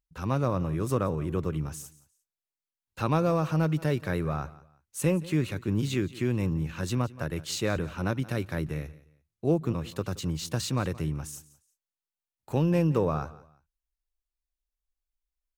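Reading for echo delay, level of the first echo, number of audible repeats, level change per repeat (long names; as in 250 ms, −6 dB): 175 ms, −19.5 dB, 2, −11.5 dB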